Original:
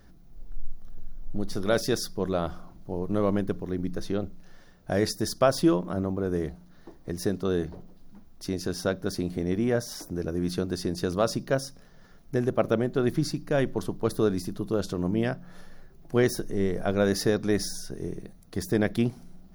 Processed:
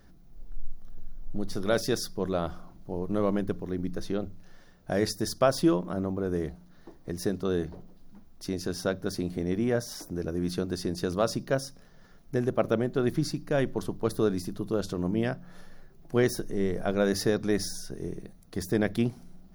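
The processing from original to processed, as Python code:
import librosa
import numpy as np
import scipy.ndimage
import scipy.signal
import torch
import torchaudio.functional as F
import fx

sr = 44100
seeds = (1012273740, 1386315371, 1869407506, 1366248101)

y = fx.hum_notches(x, sr, base_hz=50, count=2)
y = y * librosa.db_to_amplitude(-1.5)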